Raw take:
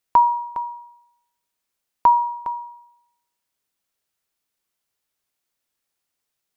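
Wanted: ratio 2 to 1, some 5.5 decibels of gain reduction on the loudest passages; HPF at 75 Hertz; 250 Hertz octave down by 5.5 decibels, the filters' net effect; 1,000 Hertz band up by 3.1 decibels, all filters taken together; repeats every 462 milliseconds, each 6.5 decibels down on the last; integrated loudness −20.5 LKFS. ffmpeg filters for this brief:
ffmpeg -i in.wav -af "highpass=75,equalizer=frequency=250:width_type=o:gain=-8,equalizer=frequency=1000:width_type=o:gain=3.5,acompressor=threshold=-17dB:ratio=2,aecho=1:1:462|924|1386|1848|2310|2772:0.473|0.222|0.105|0.0491|0.0231|0.0109,volume=3.5dB" out.wav

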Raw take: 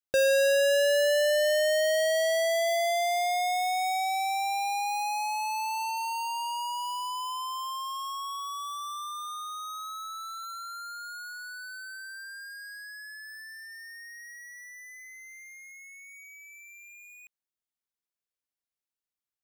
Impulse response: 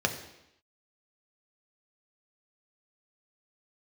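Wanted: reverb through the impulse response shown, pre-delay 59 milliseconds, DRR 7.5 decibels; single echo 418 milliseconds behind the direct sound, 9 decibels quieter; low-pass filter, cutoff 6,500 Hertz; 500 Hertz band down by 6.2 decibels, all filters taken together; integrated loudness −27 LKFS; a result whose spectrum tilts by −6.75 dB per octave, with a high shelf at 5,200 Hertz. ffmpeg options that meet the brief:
-filter_complex "[0:a]lowpass=6500,equalizer=frequency=500:width_type=o:gain=-8,highshelf=frequency=5200:gain=-4.5,aecho=1:1:418:0.355,asplit=2[link_01][link_02];[1:a]atrim=start_sample=2205,adelay=59[link_03];[link_02][link_03]afir=irnorm=-1:irlink=0,volume=-17.5dB[link_04];[link_01][link_04]amix=inputs=2:normalize=0,volume=4.5dB"

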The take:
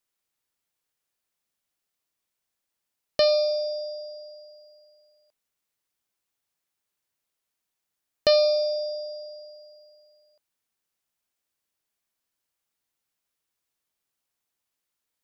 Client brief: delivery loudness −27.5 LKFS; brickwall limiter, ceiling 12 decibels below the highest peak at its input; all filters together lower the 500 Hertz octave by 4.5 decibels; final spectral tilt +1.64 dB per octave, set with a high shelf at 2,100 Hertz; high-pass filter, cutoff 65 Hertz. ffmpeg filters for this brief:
ffmpeg -i in.wav -af "highpass=65,equalizer=frequency=500:width_type=o:gain=-5.5,highshelf=frequency=2100:gain=-3.5,volume=5dB,alimiter=limit=-18.5dB:level=0:latency=1" out.wav

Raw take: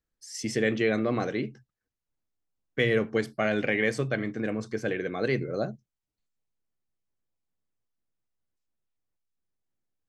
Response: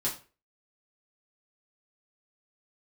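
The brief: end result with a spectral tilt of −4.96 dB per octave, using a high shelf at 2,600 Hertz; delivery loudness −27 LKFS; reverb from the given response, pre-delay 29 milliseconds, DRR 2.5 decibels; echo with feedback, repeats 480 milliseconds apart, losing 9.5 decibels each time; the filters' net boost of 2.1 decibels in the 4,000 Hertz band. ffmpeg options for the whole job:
-filter_complex "[0:a]highshelf=frequency=2600:gain=-6.5,equalizer=frequency=4000:width_type=o:gain=8.5,aecho=1:1:480|960|1440|1920:0.335|0.111|0.0365|0.012,asplit=2[link_01][link_02];[1:a]atrim=start_sample=2205,adelay=29[link_03];[link_02][link_03]afir=irnorm=-1:irlink=0,volume=-8dB[link_04];[link_01][link_04]amix=inputs=2:normalize=0,volume=-1dB"

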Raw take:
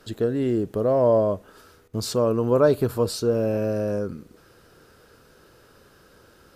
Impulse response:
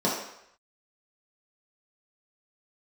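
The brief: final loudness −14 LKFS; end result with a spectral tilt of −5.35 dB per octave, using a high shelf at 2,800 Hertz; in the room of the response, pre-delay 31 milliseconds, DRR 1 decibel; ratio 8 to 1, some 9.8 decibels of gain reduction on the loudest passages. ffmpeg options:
-filter_complex "[0:a]highshelf=frequency=2800:gain=5.5,acompressor=threshold=-24dB:ratio=8,asplit=2[link_01][link_02];[1:a]atrim=start_sample=2205,adelay=31[link_03];[link_02][link_03]afir=irnorm=-1:irlink=0,volume=-14.5dB[link_04];[link_01][link_04]amix=inputs=2:normalize=0,volume=10dB"

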